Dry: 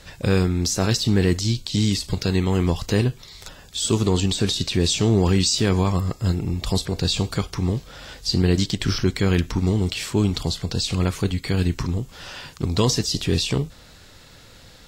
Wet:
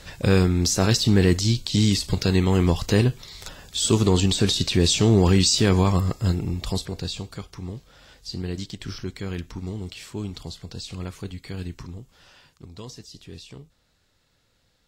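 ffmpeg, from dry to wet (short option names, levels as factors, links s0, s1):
-af "volume=1.12,afade=t=out:st=6.01:d=1.24:silence=0.237137,afade=t=out:st=11.61:d=1.11:silence=0.375837"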